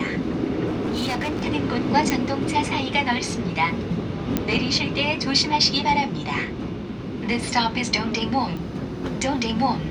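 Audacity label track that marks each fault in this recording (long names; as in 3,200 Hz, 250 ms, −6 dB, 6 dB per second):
0.660000	1.370000	clipping −21.5 dBFS
2.100000	2.100000	click −6 dBFS
4.370000	4.370000	click −7 dBFS
8.570000	8.570000	click −21 dBFS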